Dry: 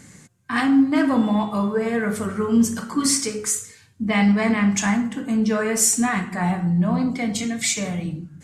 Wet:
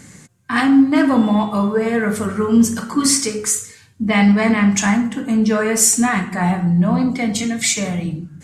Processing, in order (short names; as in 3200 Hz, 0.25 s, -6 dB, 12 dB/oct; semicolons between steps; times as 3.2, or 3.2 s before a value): ending taper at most 590 dB/s; gain +4.5 dB